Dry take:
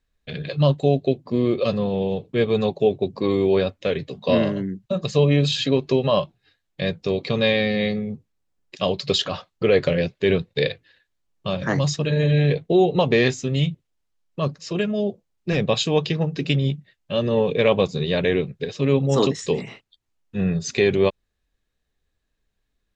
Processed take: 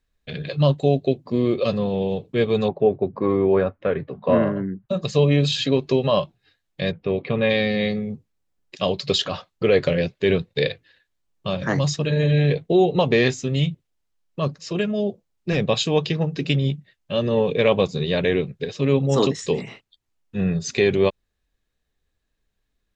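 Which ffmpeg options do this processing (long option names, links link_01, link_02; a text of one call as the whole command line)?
ffmpeg -i in.wav -filter_complex "[0:a]asettb=1/sr,asplit=3[link_01][link_02][link_03];[link_01]atrim=end=2.684[link_04];[link_02]atrim=start=2.68:end=4.89,asetpts=PTS-STARTPTS,afade=type=in:duration=0.004:curve=qsin,afade=type=out:start_time=2.206:duration=0.004:curve=qsin,lowpass=frequency=1400:width_type=q:width=1.8[link_05];[link_03]atrim=start=4.886[link_06];[link_04][link_05]acrossfade=duration=0.004:curve1=hsin:curve2=qsin[link_07];[link_07][link_06]acrossfade=duration=0.004:curve1=qsin:curve2=hsin,asplit=3[link_08][link_09][link_10];[link_08]afade=type=out:start_time=6.91:duration=0.02[link_11];[link_09]lowpass=frequency=2800:width=0.5412,lowpass=frequency=2800:width=1.3066,afade=type=in:start_time=6.91:duration=0.02,afade=type=out:start_time=7.49:duration=0.02[link_12];[link_10]afade=type=in:start_time=7.49:duration=0.02[link_13];[link_11][link_12][link_13]amix=inputs=3:normalize=0" out.wav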